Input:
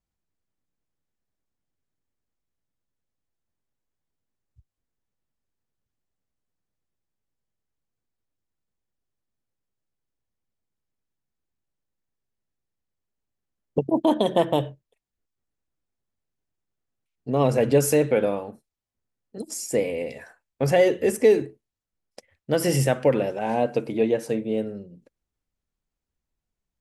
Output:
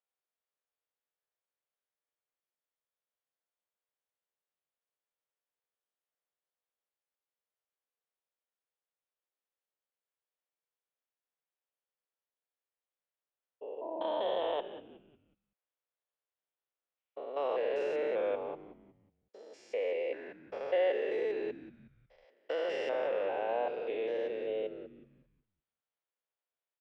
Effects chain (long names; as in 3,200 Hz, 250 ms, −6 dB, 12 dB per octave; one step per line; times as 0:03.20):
spectrum averaged block by block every 200 ms
Chebyshev band-pass filter 480–3,500 Hz, order 3
in parallel at −3 dB: compressor whose output falls as the input rises −31 dBFS
on the sum: echo with shifted repeats 183 ms, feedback 37%, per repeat −100 Hz, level −14 dB
level −8.5 dB